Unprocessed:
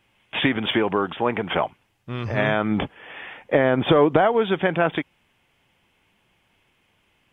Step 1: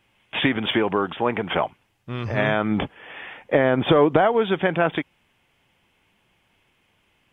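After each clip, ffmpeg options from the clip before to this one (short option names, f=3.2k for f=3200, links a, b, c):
-af anull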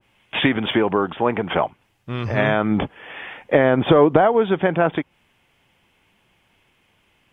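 -af "adynamicequalizer=threshold=0.0178:dfrequency=1600:dqfactor=0.7:tfrequency=1600:tqfactor=0.7:attack=5:release=100:ratio=0.375:range=4:mode=cutabove:tftype=highshelf,volume=3dB"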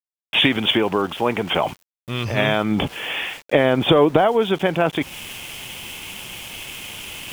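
-af "areverse,acompressor=mode=upward:threshold=-18dB:ratio=2.5,areverse,aexciter=amount=3.3:drive=4.7:freq=2.5k,aeval=exprs='val(0)*gte(abs(val(0)),0.0178)':c=same,volume=-1dB"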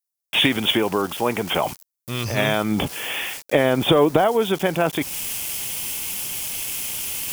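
-af "aexciter=amount=4.2:drive=3.2:freq=4.4k,volume=-1.5dB"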